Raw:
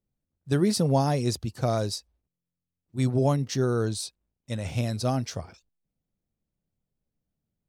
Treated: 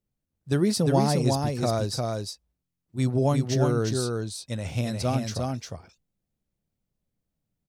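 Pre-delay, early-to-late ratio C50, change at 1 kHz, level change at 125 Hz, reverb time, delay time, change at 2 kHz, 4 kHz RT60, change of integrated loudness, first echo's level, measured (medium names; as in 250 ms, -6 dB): no reverb, no reverb, +1.5 dB, +1.5 dB, no reverb, 353 ms, +1.5 dB, no reverb, +1.0 dB, -3.5 dB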